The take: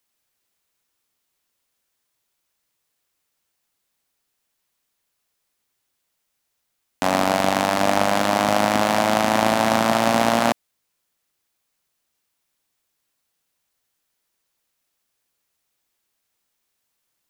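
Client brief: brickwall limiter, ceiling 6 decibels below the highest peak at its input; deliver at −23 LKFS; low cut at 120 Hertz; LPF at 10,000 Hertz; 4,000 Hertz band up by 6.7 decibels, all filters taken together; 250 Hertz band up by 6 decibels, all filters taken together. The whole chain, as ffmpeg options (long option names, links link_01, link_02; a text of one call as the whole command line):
ffmpeg -i in.wav -af "highpass=120,lowpass=10000,equalizer=frequency=250:width_type=o:gain=7.5,equalizer=frequency=4000:width_type=o:gain=8.5,volume=-3dB,alimiter=limit=-7.5dB:level=0:latency=1" out.wav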